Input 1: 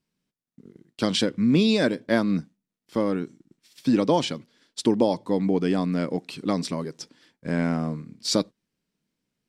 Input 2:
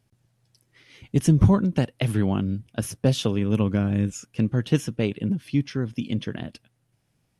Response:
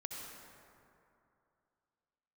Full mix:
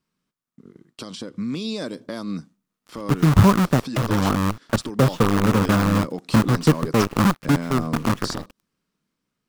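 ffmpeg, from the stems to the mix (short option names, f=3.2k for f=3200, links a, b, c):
-filter_complex "[0:a]acrossover=split=1100|3500[a][b][c];[a]acompressor=threshold=-30dB:ratio=4[d];[b]acompressor=threshold=-54dB:ratio=4[e];[c]acompressor=threshold=-36dB:ratio=4[f];[d][e][f]amix=inputs=3:normalize=0,alimiter=level_in=2.5dB:limit=-24dB:level=0:latency=1:release=210,volume=-2.5dB,volume=1dB,asplit=2[g][h];[1:a]lowpass=1.9k,acrusher=bits=5:dc=4:mix=0:aa=0.000001,adelay=1950,volume=-0.5dB[i];[h]apad=whole_len=412194[j];[i][j]sidechaincompress=threshold=-33dB:ratio=3:attack=8.6:release=431[k];[g][k]amix=inputs=2:normalize=0,equalizer=f=1.2k:t=o:w=0.58:g=9.5,dynaudnorm=f=250:g=11:m=7.5dB"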